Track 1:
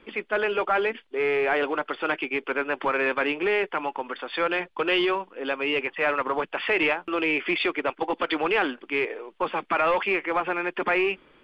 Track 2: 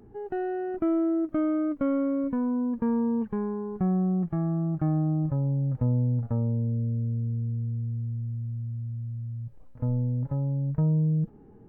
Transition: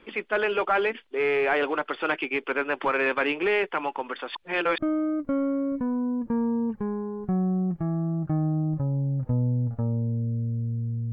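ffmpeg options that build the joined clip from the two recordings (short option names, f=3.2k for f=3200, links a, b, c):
-filter_complex "[0:a]apad=whole_dur=11.12,atrim=end=11.12,asplit=2[a][b];[a]atrim=end=4.352[c];[b]atrim=start=4.348:end=4.782,asetpts=PTS-STARTPTS,areverse[d];[1:a]atrim=start=1.298:end=7.64[e];[c][d]acrossfade=d=0.004:c1=hsin:c2=hsin[f];[f][e]acrossfade=d=0.004:c1=hsin:c2=hsin"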